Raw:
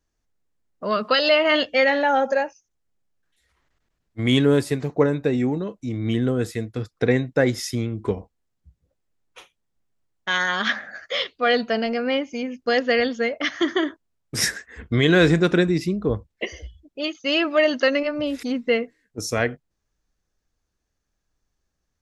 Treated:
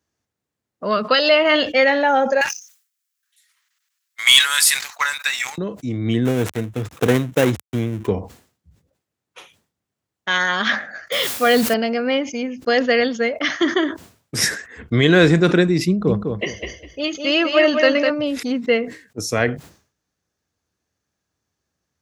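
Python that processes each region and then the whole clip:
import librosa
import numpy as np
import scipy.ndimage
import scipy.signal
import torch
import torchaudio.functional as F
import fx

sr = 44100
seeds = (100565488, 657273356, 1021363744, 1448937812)

y = fx.chain(x, sr, fx.cheby2_highpass(hz=330.0, order=4, stop_db=60),
    fx.tilt_eq(slope=4.5),
    fx.leveller(passes=2), at=(2.41, 5.58))
y = fx.chain(y, sr, fx.dead_time(dead_ms=0.28),
    fx.peak_eq(hz=4700.0, db=-7.5, octaves=0.36), at=(6.25, 8.07))
y = fx.chain(y, sr, fx.low_shelf(hz=170.0, db=10.5),
    fx.quant_dither(seeds[0], bits=6, dither='triangular'),
    fx.sustainer(db_per_s=65.0), at=(11.12, 11.74))
y = fx.chain(y, sr, fx.peak_eq(hz=180.0, db=4.5, octaves=0.4),
    fx.echo_feedback(ms=202, feedback_pct=21, wet_db=-5.5), at=(15.87, 18.1))
y = scipy.signal.sosfilt(scipy.signal.butter(4, 78.0, 'highpass', fs=sr, output='sos'), y)
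y = fx.sustainer(y, sr, db_per_s=130.0)
y = y * 10.0 ** (3.0 / 20.0)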